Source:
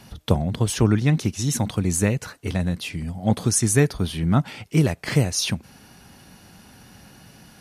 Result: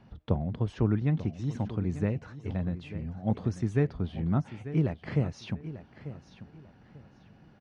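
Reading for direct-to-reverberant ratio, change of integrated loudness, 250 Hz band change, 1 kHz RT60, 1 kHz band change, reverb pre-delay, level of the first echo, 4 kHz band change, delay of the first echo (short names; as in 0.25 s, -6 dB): none, -8.5 dB, -7.5 dB, none, -10.0 dB, none, -13.5 dB, -21.0 dB, 0.892 s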